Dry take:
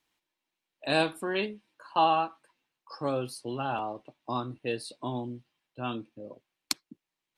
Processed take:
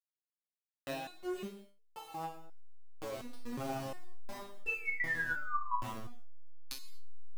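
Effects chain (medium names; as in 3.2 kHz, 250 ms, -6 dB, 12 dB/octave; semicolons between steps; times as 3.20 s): send-on-delta sampling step -28 dBFS; compression 10:1, threshold -38 dBFS, peak gain reduction 18.5 dB; painted sound fall, 4.66–5.77 s, 950–2700 Hz -34 dBFS; gated-style reverb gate 260 ms falling, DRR 3.5 dB; resonator arpeggio 2.8 Hz 110–440 Hz; trim +8.5 dB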